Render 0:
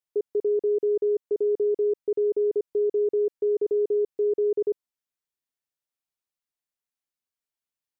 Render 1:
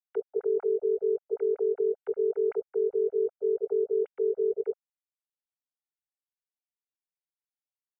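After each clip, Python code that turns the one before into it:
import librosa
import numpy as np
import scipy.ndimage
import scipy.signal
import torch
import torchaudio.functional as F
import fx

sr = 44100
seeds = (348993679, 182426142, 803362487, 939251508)

y = fx.sine_speech(x, sr)
y = y + 0.7 * np.pad(y, (int(1.4 * sr / 1000.0), 0))[:len(y)]
y = y * 10.0 ** (2.5 / 20.0)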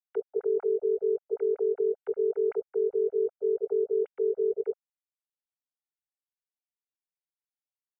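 y = x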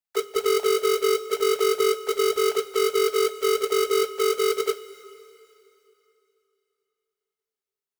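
y = fx.halfwave_hold(x, sr)
y = fx.rev_double_slope(y, sr, seeds[0], early_s=0.21, late_s=3.0, knee_db=-18, drr_db=7.0)
y = y * 10.0 ** (1.5 / 20.0)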